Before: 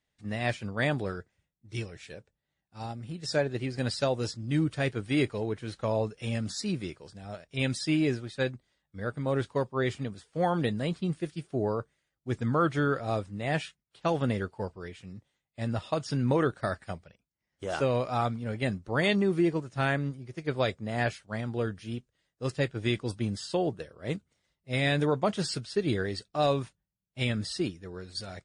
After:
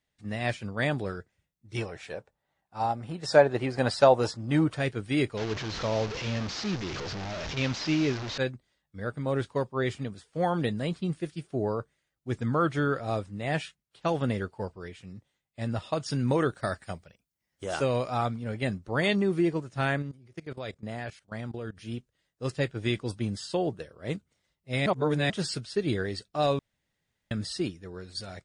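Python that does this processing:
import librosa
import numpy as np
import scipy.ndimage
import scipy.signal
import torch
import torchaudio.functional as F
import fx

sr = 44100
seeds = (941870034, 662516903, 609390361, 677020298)

y = fx.peak_eq(x, sr, hz=850.0, db=13.5, octaves=1.8, at=(1.75, 4.77))
y = fx.delta_mod(y, sr, bps=32000, step_db=-29.0, at=(5.37, 8.38))
y = fx.high_shelf(y, sr, hz=5700.0, db=7.5, at=(16.06, 18.1))
y = fx.level_steps(y, sr, step_db=18, at=(20.02, 21.77))
y = fx.edit(y, sr, fx.reverse_span(start_s=24.86, length_s=0.44),
    fx.room_tone_fill(start_s=26.59, length_s=0.72), tone=tone)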